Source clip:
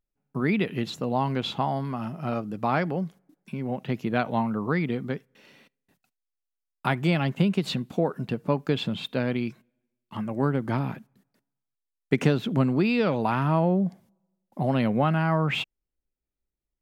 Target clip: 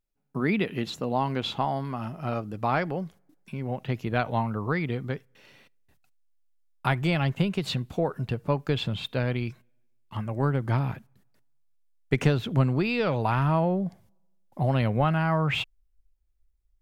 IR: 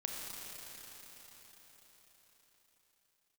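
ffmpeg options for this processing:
-af "asubboost=boost=12:cutoff=61"

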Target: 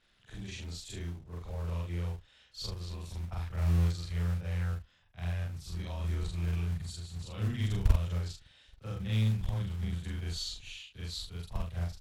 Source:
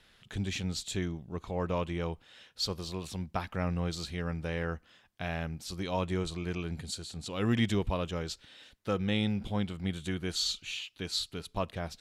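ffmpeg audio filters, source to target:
ffmpeg -i in.wav -filter_complex "[0:a]afftfilt=real='re':imag='-im':win_size=4096:overlap=0.75,asubboost=boost=9.5:cutoff=90,acrossover=split=260|3000[link_01][link_02][link_03];[link_02]acompressor=threshold=-42dB:ratio=6[link_04];[link_01][link_04][link_03]amix=inputs=3:normalize=0,aeval=exprs='0.299*(cos(1*acos(clip(val(0)/0.299,-1,1)))-cos(1*PI/2))+0.0075*(cos(4*acos(clip(val(0)/0.299,-1,1)))-cos(4*PI/2))+0.0133*(cos(7*acos(clip(val(0)/0.299,-1,1)))-cos(7*PI/2))':channel_layout=same,acrossover=split=140|990|2200[link_05][link_06][link_07][link_08];[link_05]acrusher=bits=5:mode=log:mix=0:aa=0.000001[link_09];[link_09][link_06][link_07][link_08]amix=inputs=4:normalize=0" -ar 44100 -c:a sbc -b:a 128k out.sbc

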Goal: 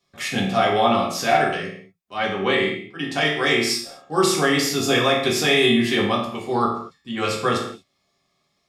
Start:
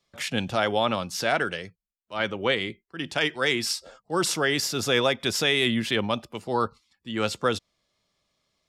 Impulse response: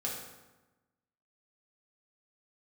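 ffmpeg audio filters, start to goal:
-filter_complex "[1:a]atrim=start_sample=2205,afade=type=out:start_time=0.43:duration=0.01,atrim=end_sample=19404,asetrate=66150,aresample=44100[link_01];[0:a][link_01]afir=irnorm=-1:irlink=0,volume=5.5dB"

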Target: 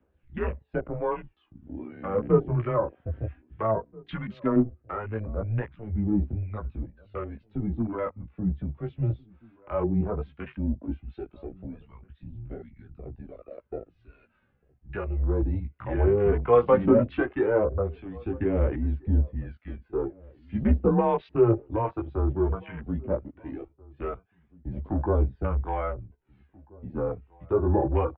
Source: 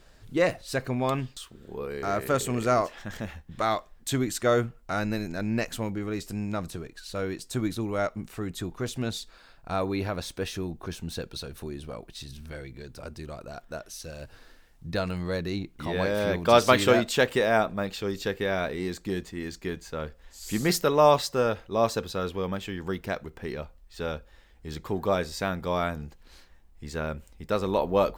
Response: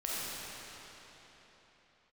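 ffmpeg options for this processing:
-filter_complex "[0:a]acrossover=split=950[link_01][link_02];[link_01]aeval=exprs='val(0)*(1-0.7/2+0.7/2*cos(2*PI*1.3*n/s))':channel_layout=same[link_03];[link_02]aeval=exprs='val(0)*(1-0.7/2-0.7/2*cos(2*PI*1.3*n/s))':channel_layout=same[link_04];[link_03][link_04]amix=inputs=2:normalize=0,flanger=delay=16:depth=2.1:speed=0.68,equalizer=frequency=180:width=6.7:gain=11,aphaser=in_gain=1:out_gain=1:delay=4.9:decay=0.54:speed=0.16:type=triangular,asplit=2[link_05][link_06];[link_06]volume=27.5dB,asoftclip=hard,volume=-27.5dB,volume=-10.5dB[link_07];[link_05][link_07]amix=inputs=2:normalize=0,asettb=1/sr,asplit=3[link_08][link_09][link_10];[link_08]atrim=end=4.154[link_11];[link_09]atrim=start=4.15:end=4.56,asetpts=PTS-STARTPTS,afade=type=in:duration=0.004:curve=qsin,afade=type=out:start_time=0.406:duration=0.004:curve=qsin,tiltshelf=frequency=920:gain=-4[link_12];[link_10]atrim=start=4.556[link_13];[link_11][link_12]acrossfade=duration=0.004:curve1=hsin:curve2=qsin[link_14];[link_14][link_13]acrossfade=duration=0.004:curve1=qsin:curve2=hsin,afwtdn=0.0126,highpass=frequency=170:width_type=q:width=0.5412,highpass=frequency=170:width_type=q:width=1.307,lowpass=frequency=2900:width_type=q:width=0.5176,lowpass=frequency=2900:width_type=q:width=0.7071,lowpass=frequency=2900:width_type=q:width=1.932,afreqshift=-110,acrossover=split=300|1100[link_15][link_16][link_17];[link_17]acompressor=threshold=-50dB:ratio=6[link_18];[link_15][link_16][link_18]amix=inputs=3:normalize=0,asplit=2[link_19][link_20];[link_20]adelay=1633,volume=-25dB,highshelf=frequency=4000:gain=-36.7[link_21];[link_19][link_21]amix=inputs=2:normalize=0,volume=4.5dB"

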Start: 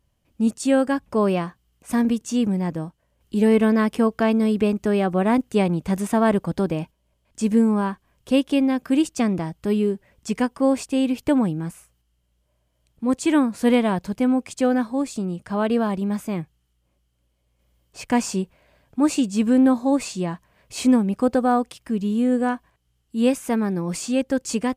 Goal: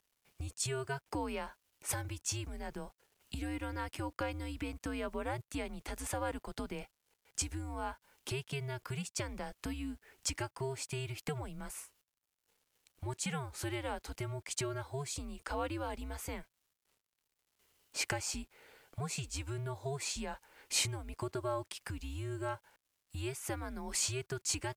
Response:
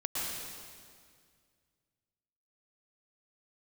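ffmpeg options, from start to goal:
-af "acompressor=threshold=-30dB:ratio=8,highpass=frequency=980:poles=1,acrusher=bits=11:mix=0:aa=0.000001,afreqshift=-140,volume=3dB" -ar 44100 -c:a libvorbis -b:a 192k

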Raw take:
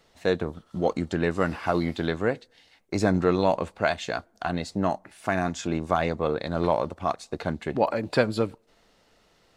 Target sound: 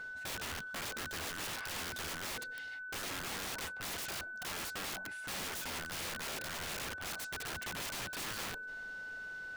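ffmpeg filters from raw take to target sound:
ffmpeg -i in.wav -af "areverse,acompressor=threshold=-32dB:ratio=10,areverse,aeval=exprs='val(0)+0.00562*sin(2*PI*1500*n/s)':channel_layout=same,aeval=exprs='(mod(84.1*val(0)+1,2)-1)/84.1':channel_layout=same,volume=3dB" out.wav

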